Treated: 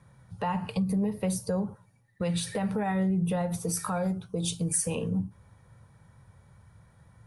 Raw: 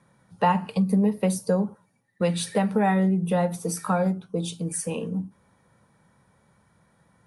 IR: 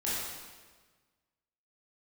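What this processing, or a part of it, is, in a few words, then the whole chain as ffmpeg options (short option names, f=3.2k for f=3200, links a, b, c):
car stereo with a boomy subwoofer: -filter_complex "[0:a]lowshelf=f=150:t=q:w=1.5:g=11,alimiter=limit=-21dB:level=0:latency=1:release=83,asettb=1/sr,asplit=3[a][b][c];[a]atrim=end=3.734[d];[b]atrim=start=3.73:end=4.95,asetpts=PTS-STARTPTS,afade=t=in:d=0.004:c=qsin,afade=t=out:st=1.216:d=0.004:c=qsin,bass=f=250:g=-1,treble=f=4k:g=5[e];[c]atrim=start=4.946[f];[d][e]acrossfade=d=0.004:c1=hsin:c2=qsin[g];[g][f]acrossfade=d=0.004:c1=qsin:c2=hsin"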